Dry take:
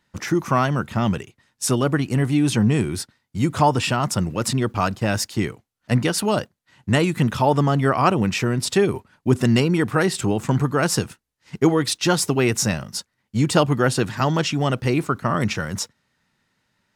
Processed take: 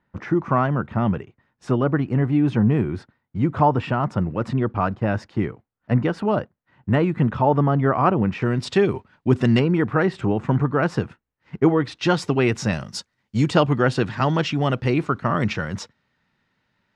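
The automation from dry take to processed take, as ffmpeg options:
ffmpeg -i in.wav -af "asetnsamples=nb_out_samples=441:pad=0,asendcmd='8.42 lowpass f 3600;9.59 lowpass f 2000;11.97 lowpass f 3400;12.73 lowpass f 6300;13.5 lowpass f 3700',lowpass=1600" out.wav

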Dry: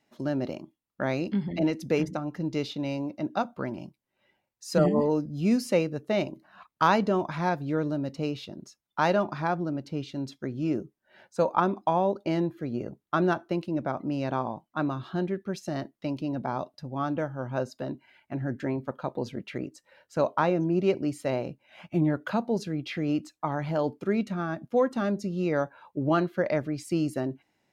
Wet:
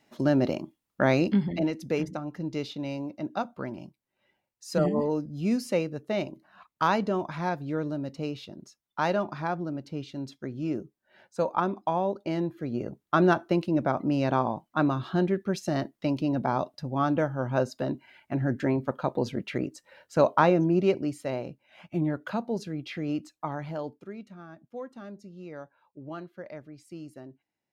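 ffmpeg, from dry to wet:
ffmpeg -i in.wav -af "volume=12.5dB,afade=type=out:start_time=1.23:duration=0.44:silence=0.375837,afade=type=in:start_time=12.35:duration=1.04:silence=0.473151,afade=type=out:start_time=20.45:duration=0.77:silence=0.446684,afade=type=out:start_time=23.45:duration=0.68:silence=0.251189" out.wav

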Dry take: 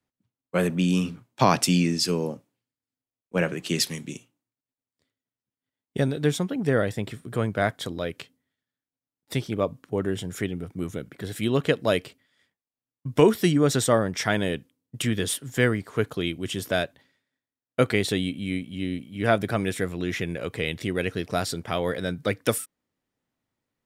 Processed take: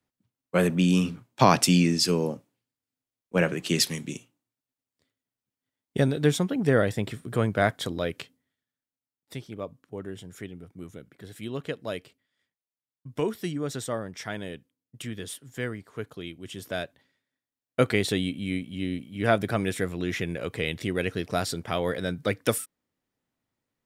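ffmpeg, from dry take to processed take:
ffmpeg -i in.wav -af "volume=10.5dB,afade=type=out:start_time=8.19:duration=1.18:silence=0.266073,afade=type=in:start_time=16.4:duration=1.4:silence=0.334965" out.wav

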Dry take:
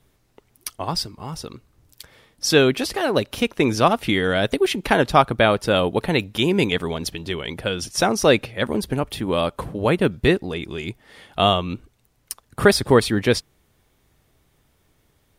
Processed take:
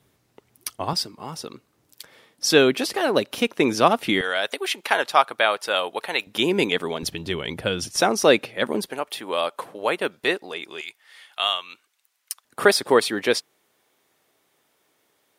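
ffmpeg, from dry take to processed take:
ffmpeg -i in.wav -af "asetnsamples=nb_out_samples=441:pad=0,asendcmd='0.93 highpass f 210;4.21 highpass f 740;6.27 highpass f 260;7.03 highpass f 84;7.96 highpass f 240;8.86 highpass f 560;10.81 highpass f 1400;12.45 highpass f 370',highpass=98" out.wav

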